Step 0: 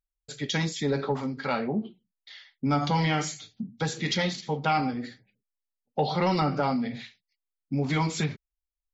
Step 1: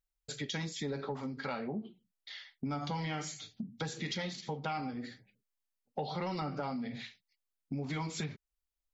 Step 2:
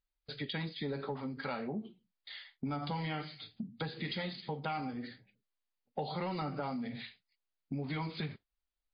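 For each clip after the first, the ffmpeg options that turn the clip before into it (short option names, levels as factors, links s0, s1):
-af "acompressor=threshold=0.0126:ratio=3"
-ar 11025 -c:a libmp3lame -b:a 32k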